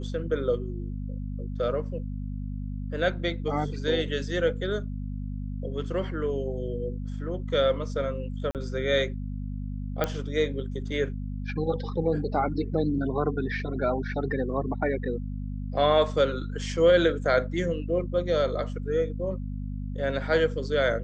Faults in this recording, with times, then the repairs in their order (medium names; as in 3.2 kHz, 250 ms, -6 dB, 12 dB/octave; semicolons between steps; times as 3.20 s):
hum 50 Hz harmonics 5 -33 dBFS
8.51–8.55 s: dropout 38 ms
10.04 s: pop -12 dBFS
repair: de-click; de-hum 50 Hz, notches 5; interpolate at 8.51 s, 38 ms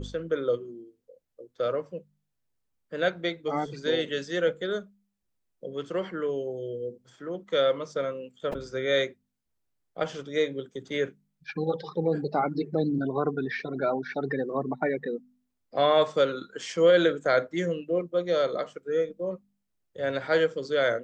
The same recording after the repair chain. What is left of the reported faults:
nothing left